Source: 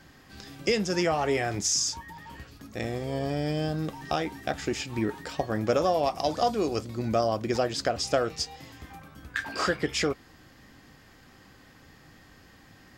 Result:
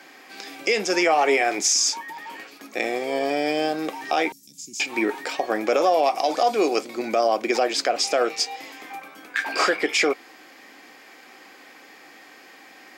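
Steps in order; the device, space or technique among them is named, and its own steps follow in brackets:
laptop speaker (high-pass filter 300 Hz 24 dB per octave; parametric band 760 Hz +5 dB 0.21 octaves; parametric band 2,300 Hz +10 dB 0.26 octaves; brickwall limiter −18 dBFS, peak gain reduction 7.5 dB)
0:04.32–0:04.80: Chebyshev band-stop filter 170–6,000 Hz, order 3
level +7.5 dB

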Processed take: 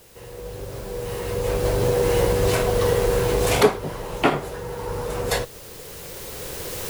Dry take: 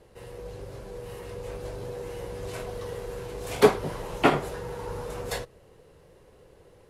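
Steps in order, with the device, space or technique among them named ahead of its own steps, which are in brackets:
cheap recorder with automatic gain (white noise bed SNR 23 dB; camcorder AGC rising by 8.3 dB per second)
level +1 dB

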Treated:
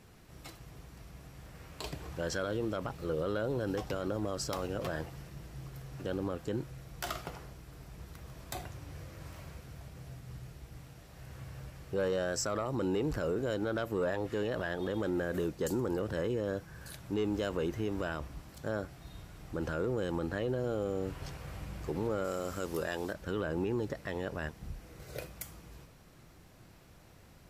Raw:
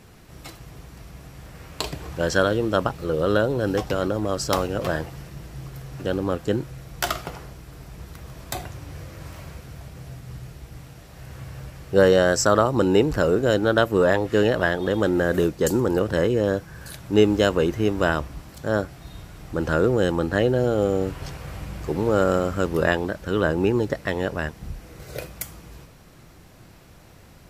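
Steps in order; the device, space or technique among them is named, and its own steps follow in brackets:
soft clipper into limiter (soft clipping −8 dBFS, distortion −20 dB; brickwall limiter −16 dBFS, peak gain reduction 7.5 dB)
0:22.24–0:23.13: bass and treble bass −5 dB, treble +9 dB
level −8.5 dB

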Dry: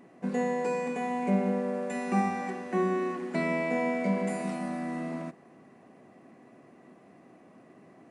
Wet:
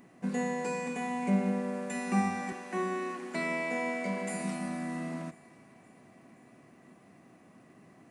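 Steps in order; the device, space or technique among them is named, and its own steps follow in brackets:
smiley-face EQ (low-shelf EQ 130 Hz +5.5 dB; parametric band 470 Hz −6 dB 1.9 octaves; high-shelf EQ 6,900 Hz +8 dB)
0:02.52–0:04.34: high-pass filter 280 Hz 12 dB per octave
feedback echo with a high-pass in the loop 521 ms, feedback 61%, level −22.5 dB

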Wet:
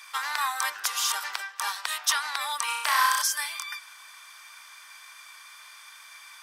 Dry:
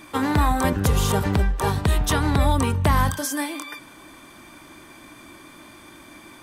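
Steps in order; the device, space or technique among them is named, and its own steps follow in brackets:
headphones lying on a table (high-pass filter 1,100 Hz 24 dB per octave; parametric band 5,300 Hz +7 dB 0.5 octaves)
0:02.65–0:03.22: flutter between parallel walls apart 5.5 metres, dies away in 0.95 s

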